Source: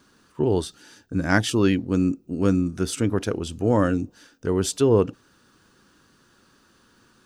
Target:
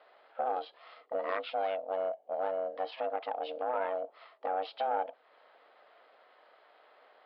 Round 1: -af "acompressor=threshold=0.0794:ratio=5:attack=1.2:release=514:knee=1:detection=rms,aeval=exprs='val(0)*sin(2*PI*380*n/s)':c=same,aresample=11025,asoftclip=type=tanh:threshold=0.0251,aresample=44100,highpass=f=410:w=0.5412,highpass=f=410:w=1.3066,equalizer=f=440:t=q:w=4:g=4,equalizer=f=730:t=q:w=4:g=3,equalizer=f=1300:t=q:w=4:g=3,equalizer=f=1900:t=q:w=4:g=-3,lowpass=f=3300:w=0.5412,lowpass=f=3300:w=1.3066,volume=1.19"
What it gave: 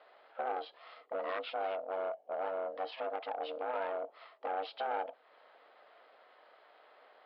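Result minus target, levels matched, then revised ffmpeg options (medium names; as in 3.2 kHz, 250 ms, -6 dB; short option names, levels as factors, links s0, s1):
saturation: distortion +8 dB
-af "acompressor=threshold=0.0794:ratio=5:attack=1.2:release=514:knee=1:detection=rms,aeval=exprs='val(0)*sin(2*PI*380*n/s)':c=same,aresample=11025,asoftclip=type=tanh:threshold=0.0631,aresample=44100,highpass=f=410:w=0.5412,highpass=f=410:w=1.3066,equalizer=f=440:t=q:w=4:g=4,equalizer=f=730:t=q:w=4:g=3,equalizer=f=1300:t=q:w=4:g=3,equalizer=f=1900:t=q:w=4:g=-3,lowpass=f=3300:w=0.5412,lowpass=f=3300:w=1.3066,volume=1.19"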